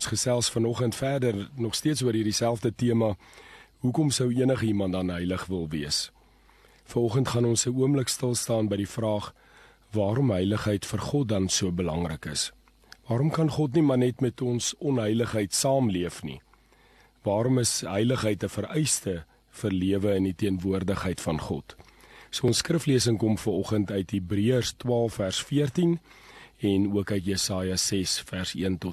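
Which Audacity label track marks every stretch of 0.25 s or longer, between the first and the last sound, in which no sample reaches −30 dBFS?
3.140000	3.840000	silence
6.050000	6.900000	silence
9.280000	9.940000	silence
12.480000	12.920000	silence
16.340000	17.260000	silence
19.180000	19.600000	silence
21.700000	22.330000	silence
25.960000	26.630000	silence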